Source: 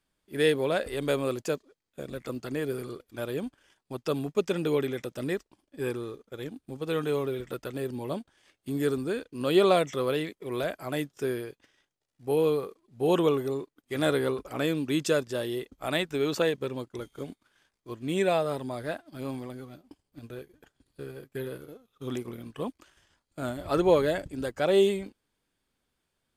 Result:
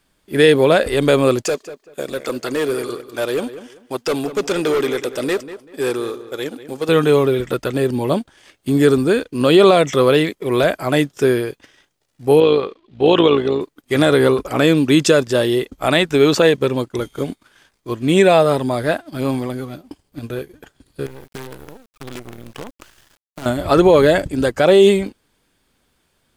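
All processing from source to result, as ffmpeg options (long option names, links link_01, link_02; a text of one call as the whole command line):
ffmpeg -i in.wav -filter_complex "[0:a]asettb=1/sr,asplit=3[link_01][link_02][link_03];[link_01]atrim=end=1.444[link_04];[link_02]atrim=start=1.44:end=6.89,asetpts=PTS-STARTPTS,afade=type=in:duration=0.004:curve=qsin,afade=type=out:start_time=5.446:duration=0.004:curve=qsin,bass=frequency=250:gain=-13,treble=frequency=4000:gain=3,asoftclip=type=hard:threshold=-29.5dB,asplit=2[link_05][link_06];[link_06]adelay=193,lowpass=frequency=2800:poles=1,volume=-13dB,asplit=2[link_07][link_08];[link_08]adelay=193,lowpass=frequency=2800:poles=1,volume=0.26,asplit=2[link_09][link_10];[link_10]adelay=193,lowpass=frequency=2800:poles=1,volume=0.26[link_11];[link_05][link_07][link_09][link_11]amix=inputs=4:normalize=0,atrim=end_sample=240345[link_12];[link_03]atrim=start=6.886[link_13];[link_04][link_12]acrossfade=duration=0.004:curve1=hsin:curve2=qsin[link_14];[link_14][link_13]acrossfade=duration=0.004:curve1=qsin:curve2=hsin,asettb=1/sr,asplit=3[link_15][link_16][link_17];[link_15]atrim=end=12.404[link_18];[link_16]atrim=start=12.4:end=13.61,asetpts=PTS-STARTPTS,afade=type=in:duration=0.004:curve=qsin,afade=type=out:start_time=1.206:duration=0.004:curve=qsin,lowpass=frequency=3400:width_type=q:width=2.2,equalizer=frequency=140:width_type=o:width=1.1:gain=-4,tremolo=f=56:d=0.519[link_19];[link_17]atrim=start=13.606[link_20];[link_18][link_19]acrossfade=duration=0.004:curve1=hsin:curve2=qsin[link_21];[link_21][link_20]acrossfade=duration=0.004:curve1=qsin:curve2=hsin,asettb=1/sr,asplit=3[link_22][link_23][link_24];[link_22]atrim=end=21.064[link_25];[link_23]atrim=start=21.06:end=23.46,asetpts=PTS-STARTPTS,afade=type=in:duration=0.004:curve=qsin,afade=type=out:start_time=2.396:duration=0.004:curve=qsin,acompressor=threshold=-47dB:ratio=3:attack=3.2:release=140:knee=1:detection=peak,acrusher=bits=8:dc=4:mix=0:aa=0.000001[link_26];[link_24]atrim=start=23.456[link_27];[link_25][link_26]acrossfade=duration=0.004:curve1=hsin:curve2=qsin[link_28];[link_28][link_27]acrossfade=duration=0.004:curve1=qsin:curve2=hsin,acrossover=split=9900[link_29][link_30];[link_30]acompressor=threshold=-58dB:ratio=4:attack=1:release=60[link_31];[link_29][link_31]amix=inputs=2:normalize=0,alimiter=level_in=16dB:limit=-1dB:release=50:level=0:latency=1,volume=-1dB" out.wav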